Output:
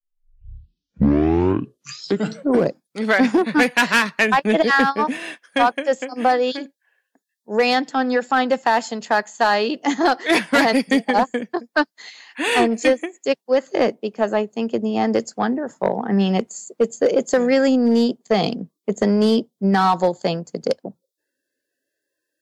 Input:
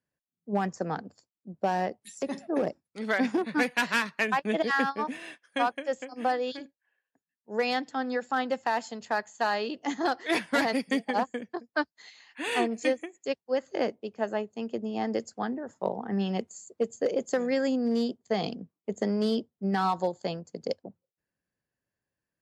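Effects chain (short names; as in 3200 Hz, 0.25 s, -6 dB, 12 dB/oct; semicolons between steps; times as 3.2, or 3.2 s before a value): tape start at the beginning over 2.92 s; spectral noise reduction 24 dB; sine folder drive 3 dB, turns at -12.5 dBFS; gain +4.5 dB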